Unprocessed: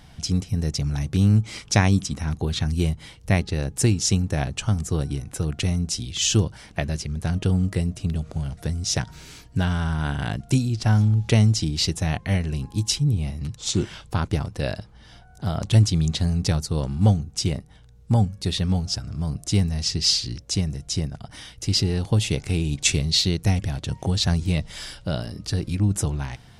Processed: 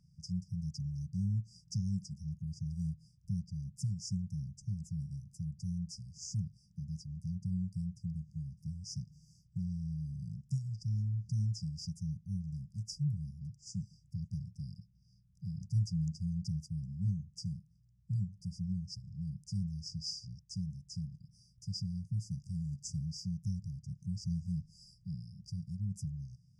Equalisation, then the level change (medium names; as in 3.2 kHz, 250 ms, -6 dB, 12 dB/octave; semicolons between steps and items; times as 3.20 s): vowel filter u; brick-wall FIR band-stop 190–4700 Hz; +9.0 dB